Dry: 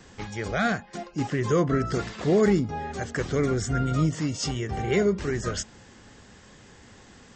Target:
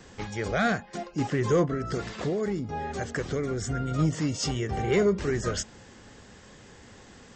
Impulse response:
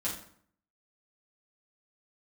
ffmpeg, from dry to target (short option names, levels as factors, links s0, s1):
-filter_complex "[0:a]equalizer=f=500:t=o:w=0.77:g=2.5,asplit=3[s0][s1][s2];[s0]afade=t=out:st=1.65:d=0.02[s3];[s1]acompressor=threshold=0.0501:ratio=6,afade=t=in:st=1.65:d=0.02,afade=t=out:st=3.98:d=0.02[s4];[s2]afade=t=in:st=3.98:d=0.02[s5];[s3][s4][s5]amix=inputs=3:normalize=0,asoftclip=type=tanh:threshold=0.2"